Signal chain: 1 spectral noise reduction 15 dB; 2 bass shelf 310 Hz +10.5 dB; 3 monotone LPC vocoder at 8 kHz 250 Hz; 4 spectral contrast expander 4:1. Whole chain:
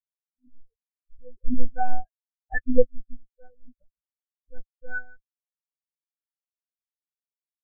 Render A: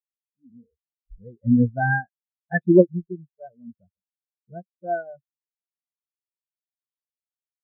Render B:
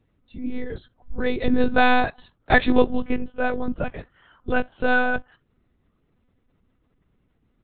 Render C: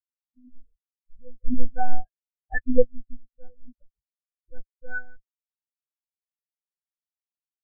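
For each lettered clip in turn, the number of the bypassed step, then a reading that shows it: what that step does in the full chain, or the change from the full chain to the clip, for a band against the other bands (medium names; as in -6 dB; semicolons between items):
3, crest factor change +4.5 dB; 4, momentary loudness spread change +5 LU; 1, momentary loudness spread change +6 LU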